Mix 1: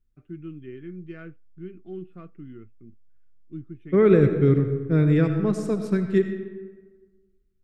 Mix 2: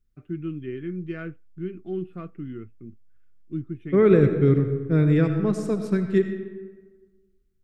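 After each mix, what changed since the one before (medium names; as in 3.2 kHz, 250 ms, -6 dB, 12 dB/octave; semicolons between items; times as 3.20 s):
first voice +6.5 dB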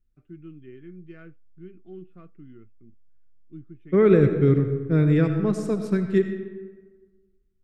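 first voice -11.5 dB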